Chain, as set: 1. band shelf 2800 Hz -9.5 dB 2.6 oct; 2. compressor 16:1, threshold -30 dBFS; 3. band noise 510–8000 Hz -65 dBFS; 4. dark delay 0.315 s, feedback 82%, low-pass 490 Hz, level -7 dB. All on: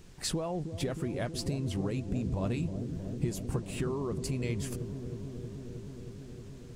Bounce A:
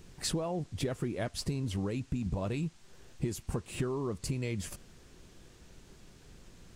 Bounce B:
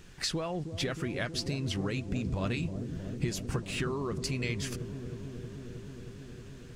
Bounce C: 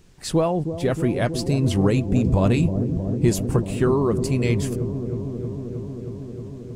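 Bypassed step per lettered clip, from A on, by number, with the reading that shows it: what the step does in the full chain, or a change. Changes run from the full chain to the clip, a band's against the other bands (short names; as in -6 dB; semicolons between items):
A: 4, echo-to-direct -13.0 dB to none; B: 1, 2 kHz band +7.5 dB; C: 2, mean gain reduction 9.0 dB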